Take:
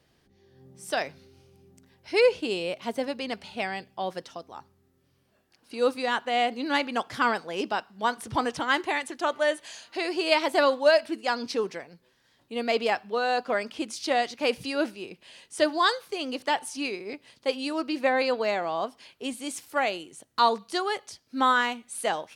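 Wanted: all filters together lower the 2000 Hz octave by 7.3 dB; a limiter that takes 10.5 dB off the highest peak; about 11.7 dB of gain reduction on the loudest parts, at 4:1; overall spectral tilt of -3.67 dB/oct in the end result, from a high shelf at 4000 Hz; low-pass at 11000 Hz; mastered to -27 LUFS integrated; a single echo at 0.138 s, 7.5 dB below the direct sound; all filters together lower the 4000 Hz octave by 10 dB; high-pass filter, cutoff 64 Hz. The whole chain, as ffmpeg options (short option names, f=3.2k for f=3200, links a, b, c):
-af "highpass=64,lowpass=11k,equalizer=f=2k:t=o:g=-7,highshelf=f=4k:g=-7.5,equalizer=f=4k:t=o:g=-6,acompressor=threshold=-31dB:ratio=4,alimiter=level_in=6.5dB:limit=-24dB:level=0:latency=1,volume=-6.5dB,aecho=1:1:138:0.422,volume=12.5dB"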